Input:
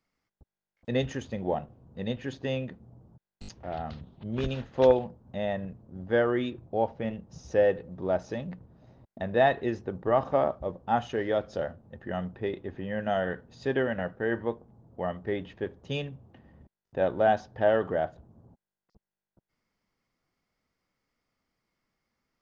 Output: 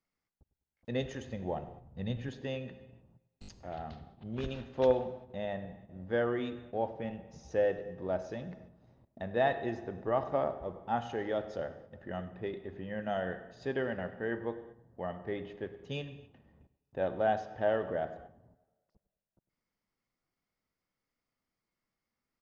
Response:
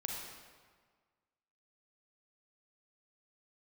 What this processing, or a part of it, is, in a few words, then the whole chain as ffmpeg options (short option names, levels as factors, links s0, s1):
keyed gated reverb: -filter_complex "[0:a]asplit=3[s0][s1][s2];[1:a]atrim=start_sample=2205[s3];[s1][s3]afir=irnorm=-1:irlink=0[s4];[s2]apad=whole_len=988714[s5];[s4][s5]sidechaingate=range=0.251:threshold=0.00282:ratio=16:detection=peak,volume=0.376[s6];[s0][s6]amix=inputs=2:normalize=0,asettb=1/sr,asplit=3[s7][s8][s9];[s7]atrim=end=1.064[s10];[s8]atrim=start=1.06:end=2.29,asetpts=PTS-STARTPTS,afade=t=in:d=0.004:c=qsin,afade=t=out:st=1.226:d=0.004:c=qsin,asubboost=boost=7.5:cutoff=180[s11];[s9]atrim=start=2.286[s12];[s10][s11]acrossfade=d=0.004:c1=hsin:c2=qsin[s13];[s13][s12]acrossfade=d=0.004:c1=qsin:c2=hsin,asplit=2[s14][s15];[s15]adelay=101,lowpass=f=2200:p=1,volume=0.158,asplit=2[s16][s17];[s17]adelay=101,lowpass=f=2200:p=1,volume=0.35,asplit=2[s18][s19];[s19]adelay=101,lowpass=f=2200:p=1,volume=0.35[s20];[s14][s16][s18][s20]amix=inputs=4:normalize=0,volume=0.376"